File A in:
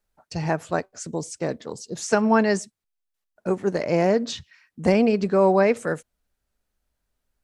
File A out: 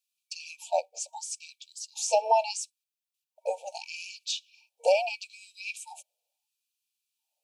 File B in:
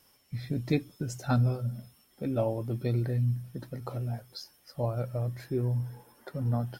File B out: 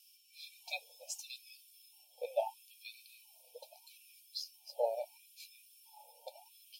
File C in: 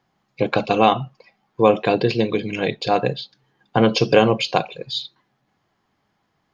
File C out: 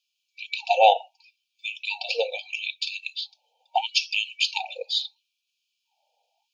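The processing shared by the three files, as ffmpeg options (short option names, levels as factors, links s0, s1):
-af "afftfilt=real='re*(1-between(b*sr/4096,930,2300))':imag='im*(1-between(b*sr/4096,930,2300))':win_size=4096:overlap=0.75,afftfilt=real='re*gte(b*sr/1024,440*pow(2200/440,0.5+0.5*sin(2*PI*0.76*pts/sr)))':imag='im*gte(b*sr/1024,440*pow(2200/440,0.5+0.5*sin(2*PI*0.76*pts/sr)))':win_size=1024:overlap=0.75,volume=1.12"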